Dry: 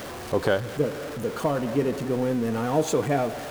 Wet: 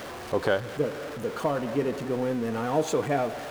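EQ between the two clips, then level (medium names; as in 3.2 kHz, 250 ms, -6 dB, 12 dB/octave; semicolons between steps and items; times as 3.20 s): bass shelf 350 Hz -5.5 dB; treble shelf 5.3 kHz -6.5 dB; 0.0 dB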